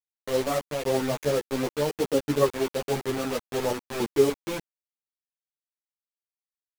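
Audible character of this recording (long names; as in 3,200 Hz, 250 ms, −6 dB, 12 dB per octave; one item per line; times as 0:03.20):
sample-and-hold tremolo, depth 70%
a quantiser's noise floor 6 bits, dither none
a shimmering, thickened sound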